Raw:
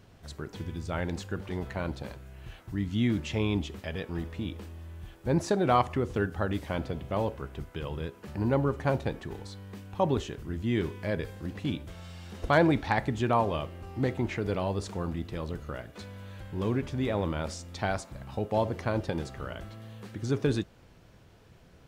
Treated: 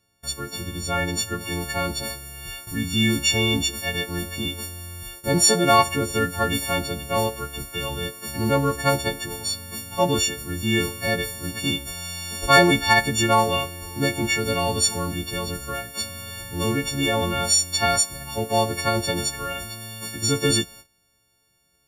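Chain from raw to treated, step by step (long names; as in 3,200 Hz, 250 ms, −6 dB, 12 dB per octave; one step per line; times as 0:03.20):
every partial snapped to a pitch grid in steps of 4 semitones
noise gate −50 dBFS, range −21 dB
high-shelf EQ 3,600 Hz +5.5 dB, from 0:01.41 +10.5 dB
level +5 dB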